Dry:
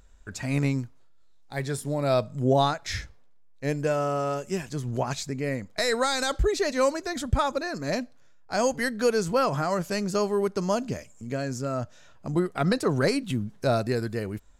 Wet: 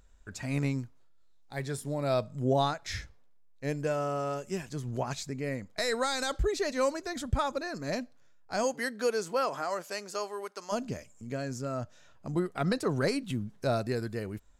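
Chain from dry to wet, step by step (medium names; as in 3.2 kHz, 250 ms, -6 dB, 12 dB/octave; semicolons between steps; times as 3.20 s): 8.63–10.71 s: high-pass 210 Hz -> 820 Hz 12 dB/octave; trim -5 dB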